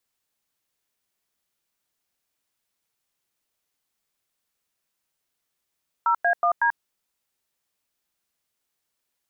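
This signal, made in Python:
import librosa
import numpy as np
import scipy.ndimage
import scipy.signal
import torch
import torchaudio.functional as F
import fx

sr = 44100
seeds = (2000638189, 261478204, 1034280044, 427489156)

y = fx.dtmf(sr, digits='0A1D', tone_ms=88, gap_ms=97, level_db=-20.0)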